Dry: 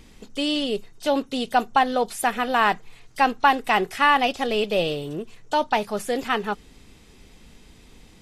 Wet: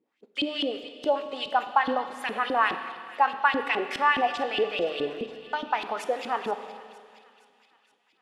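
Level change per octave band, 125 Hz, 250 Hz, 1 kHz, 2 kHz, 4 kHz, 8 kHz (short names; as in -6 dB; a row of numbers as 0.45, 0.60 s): -13.0 dB, -7.5 dB, -4.0 dB, -3.5 dB, -4.5 dB, under -10 dB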